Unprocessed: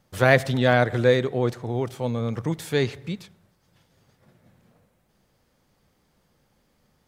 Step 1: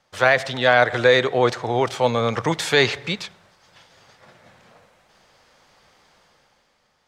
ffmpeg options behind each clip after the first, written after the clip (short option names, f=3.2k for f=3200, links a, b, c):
-filter_complex "[0:a]acrossover=split=540 7500:gain=0.178 1 0.126[a][b][c];[a][b][c]amix=inputs=3:normalize=0,dynaudnorm=f=120:g=13:m=10dB,alimiter=level_in=9dB:limit=-1dB:release=50:level=0:latency=1,volume=-3.5dB"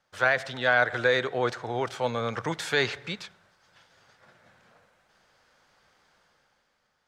-af "equalizer=f=1.5k:t=o:w=0.37:g=6.5,volume=-9dB"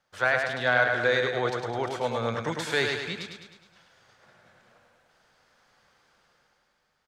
-af "aecho=1:1:104|208|312|416|520|624|728:0.562|0.298|0.158|0.0837|0.0444|0.0235|0.0125,volume=-1.5dB"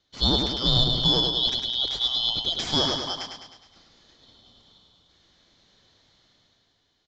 -filter_complex "[0:a]afftfilt=real='real(if(lt(b,272),68*(eq(floor(b/68),0)*1+eq(floor(b/68),1)*3+eq(floor(b/68),2)*0+eq(floor(b/68),3)*2)+mod(b,68),b),0)':imag='imag(if(lt(b,272),68*(eq(floor(b/68),0)*1+eq(floor(b/68),1)*3+eq(floor(b/68),2)*0+eq(floor(b/68),3)*2)+mod(b,68),b),0)':win_size=2048:overlap=0.75,asplit=2[a][b];[b]asoftclip=type=hard:threshold=-22.5dB,volume=-11dB[c];[a][c]amix=inputs=2:normalize=0,aresample=16000,aresample=44100,volume=1dB"